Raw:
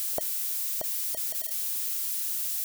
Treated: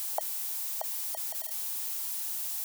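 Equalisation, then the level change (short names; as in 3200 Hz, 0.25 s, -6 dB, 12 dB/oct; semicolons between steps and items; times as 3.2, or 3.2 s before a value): resonant high-pass 830 Hz, resonance Q 4.9; -4.0 dB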